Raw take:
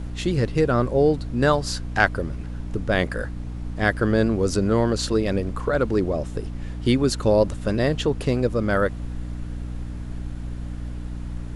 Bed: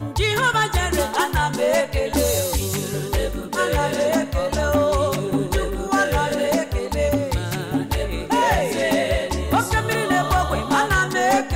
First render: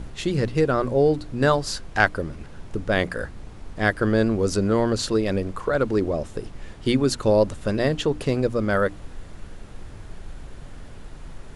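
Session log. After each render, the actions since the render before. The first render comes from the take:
mains-hum notches 60/120/180/240/300 Hz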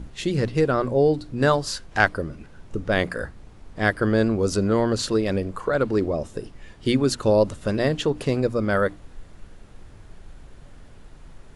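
noise reduction from a noise print 6 dB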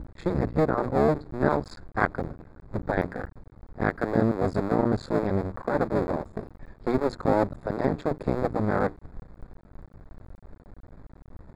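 sub-harmonics by changed cycles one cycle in 2, muted
moving average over 15 samples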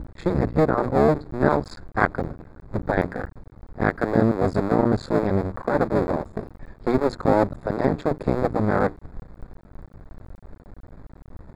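level +4 dB

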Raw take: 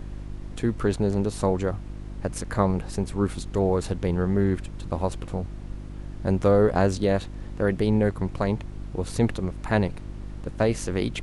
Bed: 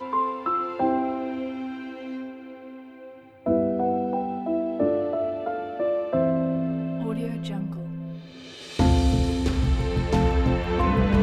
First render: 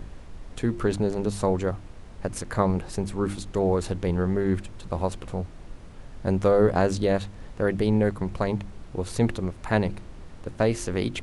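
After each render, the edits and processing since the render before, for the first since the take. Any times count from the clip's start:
hum removal 50 Hz, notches 7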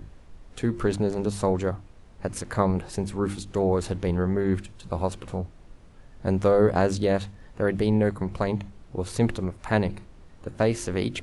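noise reduction from a noise print 7 dB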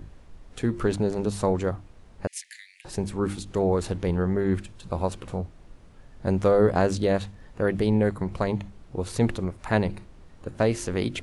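0:02.27–0:02.85: Butterworth high-pass 1,800 Hz 96 dB per octave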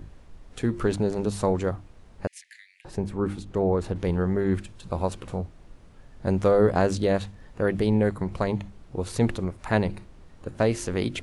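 0:02.28–0:03.96: high-shelf EQ 2,900 Hz −11 dB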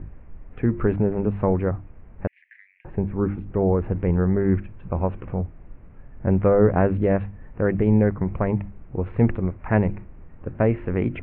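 Butterworth low-pass 2,500 Hz 48 dB per octave
low-shelf EQ 300 Hz +6.5 dB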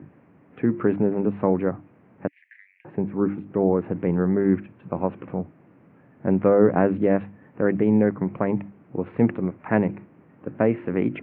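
high-pass filter 140 Hz 24 dB per octave
parametric band 290 Hz +4.5 dB 0.34 octaves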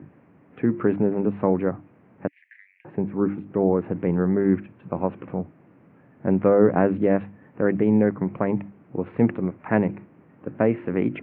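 no processing that can be heard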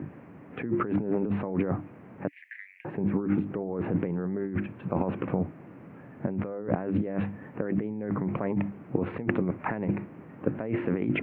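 compressor whose output falls as the input rises −29 dBFS, ratio −1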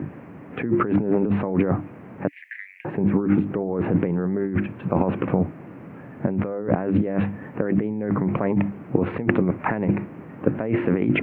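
level +7 dB
brickwall limiter −3 dBFS, peak gain reduction 1.5 dB

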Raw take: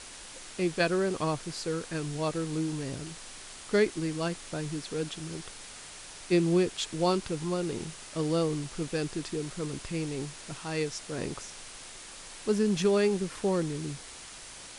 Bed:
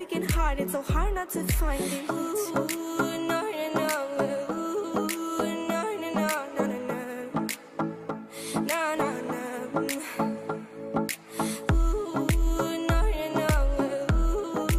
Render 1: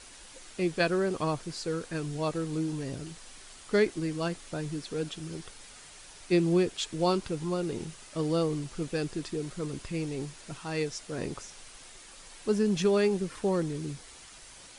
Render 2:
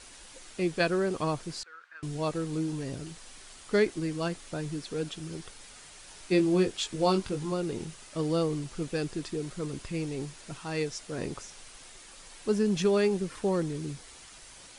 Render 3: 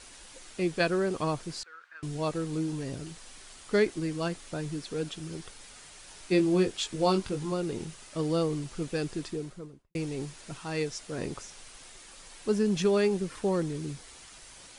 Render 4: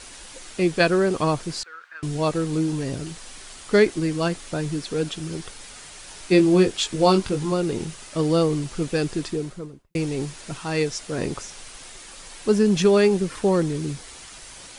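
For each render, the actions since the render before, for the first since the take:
broadband denoise 6 dB, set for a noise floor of −46 dBFS
0:01.63–0:02.03: four-pole ladder band-pass 1,600 Hz, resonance 60%; 0:06.05–0:07.52: double-tracking delay 21 ms −6 dB
0:09.20–0:09.95: fade out and dull
level +8 dB

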